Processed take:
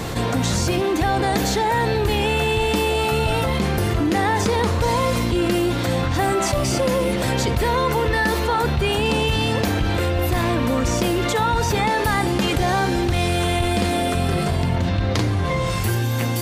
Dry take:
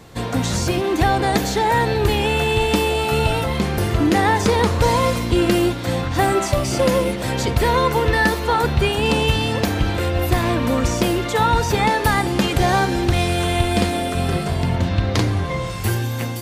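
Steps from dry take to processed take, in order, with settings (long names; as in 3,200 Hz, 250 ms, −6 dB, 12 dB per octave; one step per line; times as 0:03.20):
envelope flattener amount 70%
level −5 dB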